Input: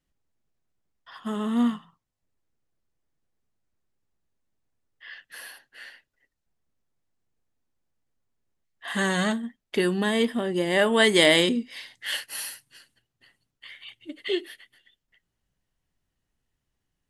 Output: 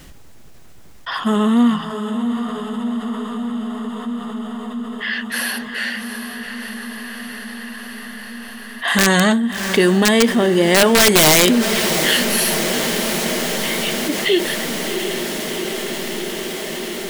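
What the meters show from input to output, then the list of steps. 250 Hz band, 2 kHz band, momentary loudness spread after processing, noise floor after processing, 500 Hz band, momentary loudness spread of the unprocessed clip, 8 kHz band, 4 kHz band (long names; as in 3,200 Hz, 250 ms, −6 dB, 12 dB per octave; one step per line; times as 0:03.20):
+11.0 dB, +10.0 dB, 17 LU, −39 dBFS, +9.0 dB, 24 LU, +18.5 dB, +10.0 dB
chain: wrap-around overflow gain 12.5 dB
feedback delay with all-pass diffusion 727 ms, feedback 71%, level −14 dB
envelope flattener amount 50%
level +7.5 dB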